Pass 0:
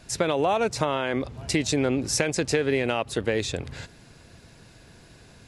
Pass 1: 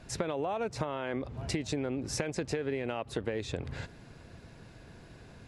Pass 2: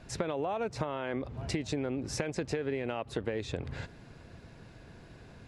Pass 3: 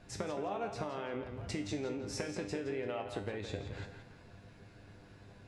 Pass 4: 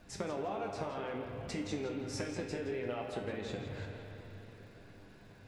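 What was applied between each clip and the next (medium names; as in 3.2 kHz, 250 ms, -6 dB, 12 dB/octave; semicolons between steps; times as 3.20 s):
treble shelf 3.3 kHz -11 dB; compression, threshold -30 dBFS, peak gain reduction 11 dB
treble shelf 7.5 kHz -6 dB
feedback comb 100 Hz, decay 0.44 s, harmonics all, mix 80%; tape echo 167 ms, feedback 41%, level -7.5 dB, low-pass 4.5 kHz; trim +4 dB
flange 0.6 Hz, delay 3.2 ms, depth 9.4 ms, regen -39%; crackle 290 per s -64 dBFS; reverberation RT60 4.2 s, pre-delay 41 ms, DRR 5.5 dB; trim +3 dB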